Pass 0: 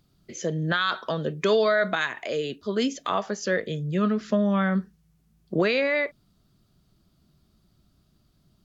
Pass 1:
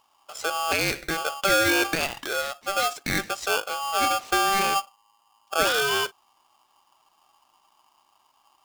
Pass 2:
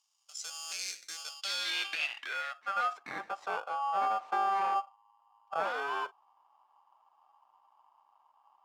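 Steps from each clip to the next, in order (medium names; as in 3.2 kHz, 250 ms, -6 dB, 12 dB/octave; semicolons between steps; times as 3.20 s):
polarity switched at an audio rate 980 Hz
one-sided clip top -27.5 dBFS; band-pass sweep 6.2 kHz -> 900 Hz, 1.14–3.19 s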